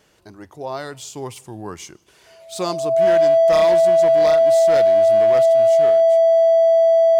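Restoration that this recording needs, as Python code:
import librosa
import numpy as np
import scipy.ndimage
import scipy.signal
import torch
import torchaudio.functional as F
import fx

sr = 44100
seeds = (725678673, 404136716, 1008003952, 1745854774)

y = fx.fix_declip(x, sr, threshold_db=-10.5)
y = fx.notch(y, sr, hz=660.0, q=30.0)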